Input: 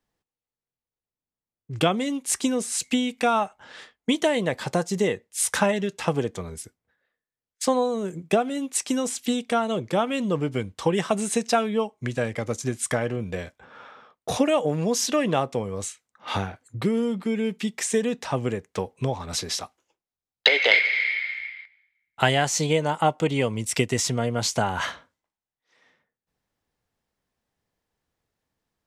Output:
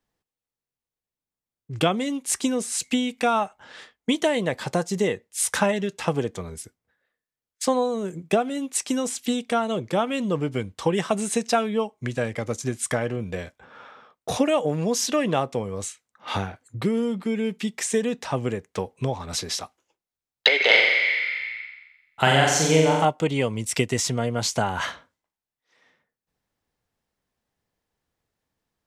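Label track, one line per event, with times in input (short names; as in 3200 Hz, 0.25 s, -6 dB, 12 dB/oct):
20.560000	23.050000	flutter echo walls apart 7.6 m, dies away in 1 s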